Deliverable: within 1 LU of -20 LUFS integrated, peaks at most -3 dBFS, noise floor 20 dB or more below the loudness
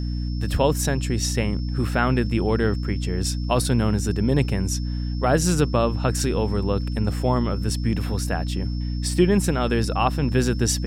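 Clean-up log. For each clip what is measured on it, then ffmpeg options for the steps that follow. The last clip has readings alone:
hum 60 Hz; harmonics up to 300 Hz; hum level -23 dBFS; steady tone 5300 Hz; tone level -43 dBFS; loudness -23.0 LUFS; peak -6.0 dBFS; loudness target -20.0 LUFS
-> -af "bandreject=f=60:t=h:w=4,bandreject=f=120:t=h:w=4,bandreject=f=180:t=h:w=4,bandreject=f=240:t=h:w=4,bandreject=f=300:t=h:w=4"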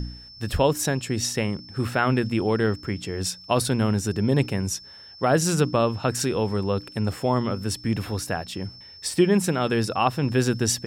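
hum none; steady tone 5300 Hz; tone level -43 dBFS
-> -af "bandreject=f=5.3k:w=30"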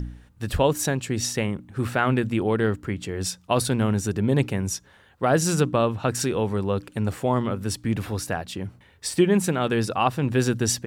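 steady tone none; loudness -24.5 LUFS; peak -6.5 dBFS; loudness target -20.0 LUFS
-> -af "volume=4.5dB,alimiter=limit=-3dB:level=0:latency=1"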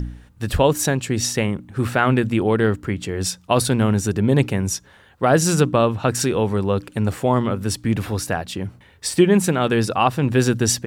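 loudness -20.0 LUFS; peak -3.0 dBFS; noise floor -50 dBFS

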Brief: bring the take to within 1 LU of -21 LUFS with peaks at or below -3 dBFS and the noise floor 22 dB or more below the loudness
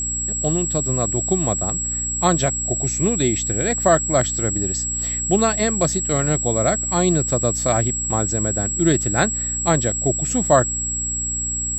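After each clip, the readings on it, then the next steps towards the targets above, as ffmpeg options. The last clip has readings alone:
hum 60 Hz; harmonics up to 300 Hz; hum level -29 dBFS; steady tone 7700 Hz; tone level -22 dBFS; loudness -19.0 LUFS; peak -2.5 dBFS; loudness target -21.0 LUFS
-> -af "bandreject=f=60:t=h:w=4,bandreject=f=120:t=h:w=4,bandreject=f=180:t=h:w=4,bandreject=f=240:t=h:w=4,bandreject=f=300:t=h:w=4"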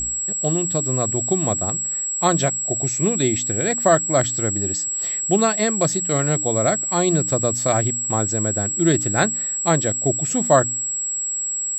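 hum none; steady tone 7700 Hz; tone level -22 dBFS
-> -af "bandreject=f=7.7k:w=30"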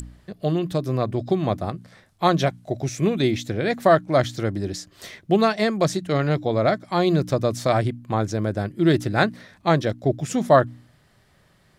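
steady tone none; loudness -22.5 LUFS; peak -3.0 dBFS; loudness target -21.0 LUFS
-> -af "volume=1.5dB,alimiter=limit=-3dB:level=0:latency=1"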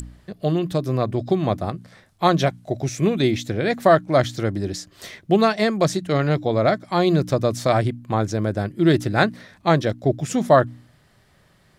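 loudness -21.0 LUFS; peak -3.0 dBFS; noise floor -58 dBFS

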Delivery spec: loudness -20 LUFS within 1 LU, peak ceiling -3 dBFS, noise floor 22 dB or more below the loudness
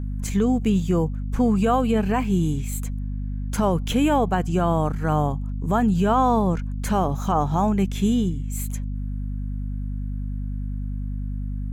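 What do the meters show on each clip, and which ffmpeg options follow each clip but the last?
hum 50 Hz; harmonics up to 250 Hz; hum level -25 dBFS; loudness -23.5 LUFS; peak -9.5 dBFS; loudness target -20.0 LUFS
-> -af "bandreject=f=50:t=h:w=4,bandreject=f=100:t=h:w=4,bandreject=f=150:t=h:w=4,bandreject=f=200:t=h:w=4,bandreject=f=250:t=h:w=4"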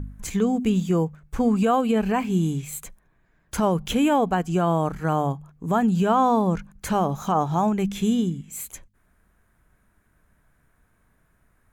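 hum none; loudness -23.0 LUFS; peak -10.5 dBFS; loudness target -20.0 LUFS
-> -af "volume=3dB"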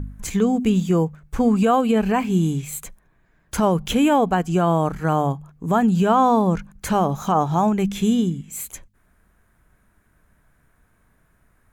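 loudness -20.0 LUFS; peak -7.5 dBFS; noise floor -62 dBFS

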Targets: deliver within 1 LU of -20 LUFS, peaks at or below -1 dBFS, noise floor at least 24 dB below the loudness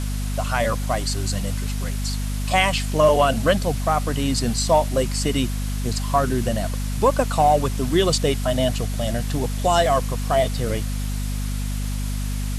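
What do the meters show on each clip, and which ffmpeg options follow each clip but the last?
hum 50 Hz; harmonics up to 250 Hz; hum level -23 dBFS; noise floor -25 dBFS; noise floor target -46 dBFS; loudness -22.0 LUFS; peak -5.5 dBFS; loudness target -20.0 LUFS
-> -af "bandreject=f=50:t=h:w=4,bandreject=f=100:t=h:w=4,bandreject=f=150:t=h:w=4,bandreject=f=200:t=h:w=4,bandreject=f=250:t=h:w=4"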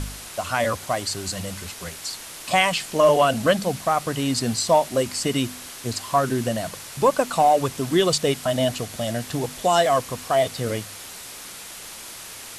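hum none; noise floor -39 dBFS; noise floor target -47 dBFS
-> -af "afftdn=nr=8:nf=-39"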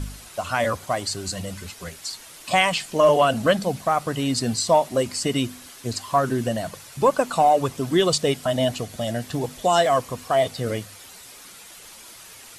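noise floor -44 dBFS; noise floor target -47 dBFS
-> -af "afftdn=nr=6:nf=-44"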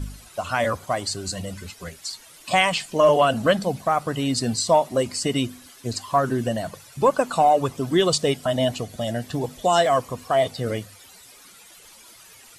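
noise floor -49 dBFS; loudness -22.5 LUFS; peak -7.0 dBFS; loudness target -20.0 LUFS
-> -af "volume=2.5dB"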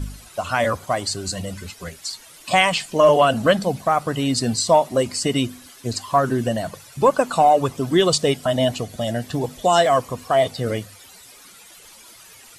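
loudness -20.0 LUFS; peak -4.5 dBFS; noise floor -46 dBFS

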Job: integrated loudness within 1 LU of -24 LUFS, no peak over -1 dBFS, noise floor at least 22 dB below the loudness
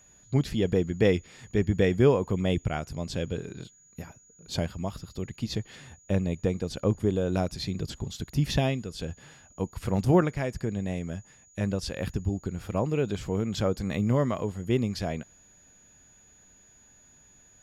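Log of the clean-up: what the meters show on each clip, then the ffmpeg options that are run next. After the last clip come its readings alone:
steady tone 6800 Hz; tone level -56 dBFS; loudness -29.0 LUFS; peak -9.0 dBFS; loudness target -24.0 LUFS
-> -af "bandreject=f=6.8k:w=30"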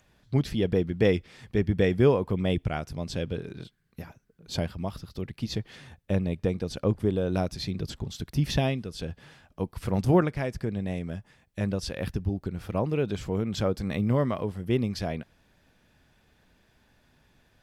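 steady tone none; loudness -29.0 LUFS; peak -9.0 dBFS; loudness target -24.0 LUFS
-> -af "volume=5dB"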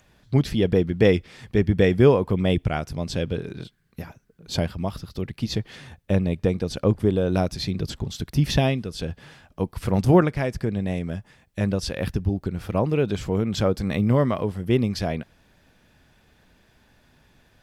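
loudness -24.0 LUFS; peak -4.0 dBFS; noise floor -61 dBFS

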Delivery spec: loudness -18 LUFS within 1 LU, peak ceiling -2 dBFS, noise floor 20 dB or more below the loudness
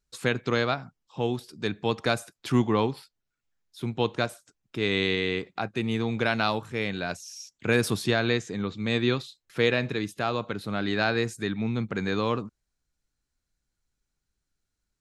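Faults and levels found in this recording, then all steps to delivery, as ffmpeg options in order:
loudness -28.0 LUFS; peak -8.0 dBFS; loudness target -18.0 LUFS
-> -af "volume=10dB,alimiter=limit=-2dB:level=0:latency=1"

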